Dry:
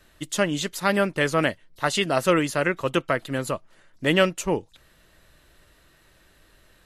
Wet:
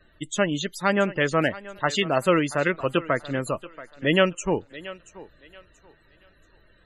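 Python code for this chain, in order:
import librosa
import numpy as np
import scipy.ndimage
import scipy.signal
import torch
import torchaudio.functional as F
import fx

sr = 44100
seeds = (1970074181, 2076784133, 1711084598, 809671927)

y = fx.spec_topn(x, sr, count=64)
y = fx.echo_thinned(y, sr, ms=681, feedback_pct=29, hz=310.0, wet_db=-16.5)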